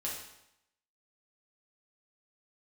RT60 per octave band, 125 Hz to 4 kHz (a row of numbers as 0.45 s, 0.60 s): 0.80 s, 0.80 s, 0.80 s, 0.85 s, 0.80 s, 0.75 s